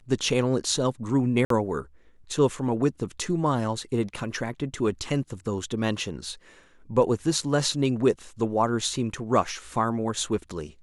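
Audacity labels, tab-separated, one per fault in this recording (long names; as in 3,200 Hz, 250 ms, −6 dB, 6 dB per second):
1.450000	1.500000	drop-out 53 ms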